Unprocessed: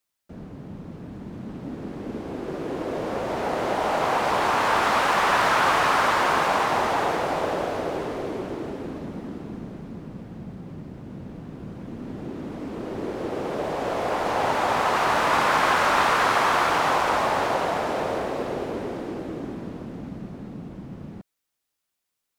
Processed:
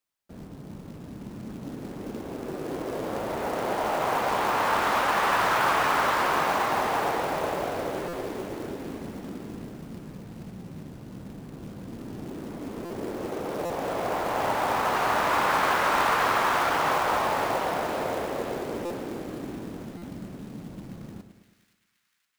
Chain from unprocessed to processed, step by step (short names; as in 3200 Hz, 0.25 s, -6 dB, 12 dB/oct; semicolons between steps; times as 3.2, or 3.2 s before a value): high shelf 4200 Hz -4 dB; de-hum 83.69 Hz, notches 9; short-mantissa float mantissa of 2-bit; split-band echo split 1600 Hz, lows 0.109 s, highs 0.52 s, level -10.5 dB; stuck buffer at 8.08/12.85/13.65/18.85/19.97, samples 256, times 8; gain -3 dB